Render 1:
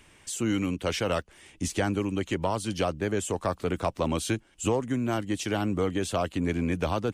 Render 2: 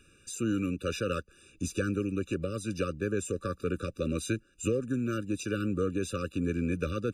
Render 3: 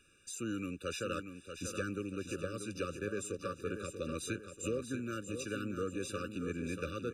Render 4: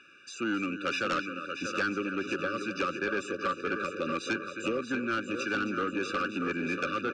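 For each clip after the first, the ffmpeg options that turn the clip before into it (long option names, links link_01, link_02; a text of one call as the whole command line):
ffmpeg -i in.wav -af "afftfilt=real='re*eq(mod(floor(b*sr/1024/580),2),0)':imag='im*eq(mod(floor(b*sr/1024/580),2),0)':win_size=1024:overlap=0.75,volume=-2.5dB" out.wav
ffmpeg -i in.wav -af "lowshelf=frequency=410:gain=-7,aecho=1:1:636|1272|1908|2544|3180:0.398|0.175|0.0771|0.0339|0.0149,volume=-4dB" out.wav
ffmpeg -i in.wav -af "highpass=270,equalizer=frequency=470:width_type=q:width=4:gain=-8,equalizer=frequency=1000:width_type=q:width=4:gain=7,equalizer=frequency=1500:width_type=q:width=4:gain=5,equalizer=frequency=2300:width_type=q:width=4:gain=3,equalizer=frequency=3800:width_type=q:width=4:gain=-6,lowpass=frequency=4800:width=0.5412,lowpass=frequency=4800:width=1.3066,aecho=1:1:265:0.237,aeval=exprs='0.0668*sin(PI/2*2.24*val(0)/0.0668)':channel_layout=same" out.wav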